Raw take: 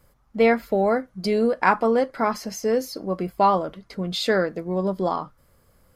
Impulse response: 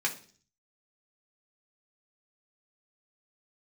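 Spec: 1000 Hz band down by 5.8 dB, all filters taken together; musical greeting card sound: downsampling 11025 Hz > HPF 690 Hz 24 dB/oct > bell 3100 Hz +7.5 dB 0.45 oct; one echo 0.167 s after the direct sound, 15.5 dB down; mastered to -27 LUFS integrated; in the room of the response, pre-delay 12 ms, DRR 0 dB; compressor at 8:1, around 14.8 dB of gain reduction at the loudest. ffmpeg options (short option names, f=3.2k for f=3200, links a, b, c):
-filter_complex "[0:a]equalizer=f=1k:t=o:g=-6.5,acompressor=threshold=-30dB:ratio=8,aecho=1:1:167:0.168,asplit=2[a][b];[1:a]atrim=start_sample=2205,adelay=12[c];[b][c]afir=irnorm=-1:irlink=0,volume=-7.5dB[d];[a][d]amix=inputs=2:normalize=0,aresample=11025,aresample=44100,highpass=f=690:w=0.5412,highpass=f=690:w=1.3066,equalizer=f=3.1k:t=o:w=0.45:g=7.5,volume=10dB"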